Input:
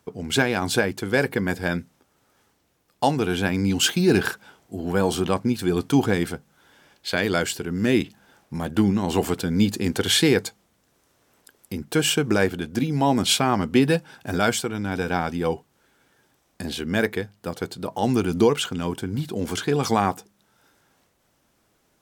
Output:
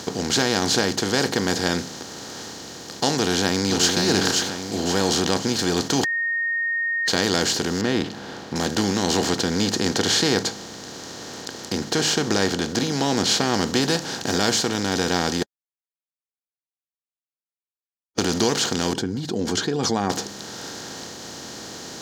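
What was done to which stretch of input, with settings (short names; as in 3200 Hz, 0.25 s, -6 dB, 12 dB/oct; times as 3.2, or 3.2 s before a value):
3.17–3.96 echo throw 0.53 s, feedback 15%, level -7 dB
6.04–7.08 bleep 1850 Hz -13 dBFS
7.81–8.56 air absorption 480 m
9.17–13.54 high shelf 6500 Hz -10 dB
15.43–18.18 mute
18.93–20.1 spectral contrast raised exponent 1.9
whole clip: per-bin compression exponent 0.4; band shelf 5200 Hz +11 dB 1 oct; gain -8 dB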